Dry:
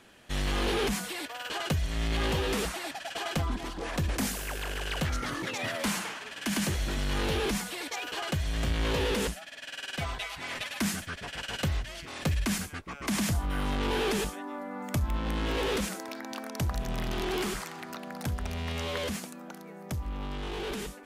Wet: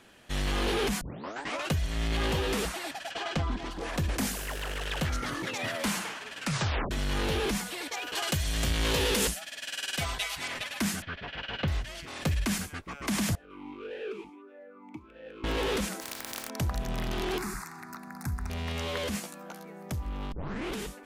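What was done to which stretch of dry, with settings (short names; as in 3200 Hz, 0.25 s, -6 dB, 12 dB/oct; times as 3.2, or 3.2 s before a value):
1.01 tape start 0.70 s
3.11–3.71 LPF 5800 Hz
4.46–5.01 Doppler distortion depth 0.43 ms
6.39 tape stop 0.52 s
8.15–10.48 high shelf 3700 Hz +11 dB
11.02–11.68 LPF 3800 Hz 24 dB/oct
13.35–15.44 vowel sweep e-u 1.6 Hz
16–16.48 spectral contrast lowered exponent 0.29
17.38–18.5 fixed phaser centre 1300 Hz, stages 4
19.11–19.65 doubler 14 ms -3 dB
20.32 tape start 0.42 s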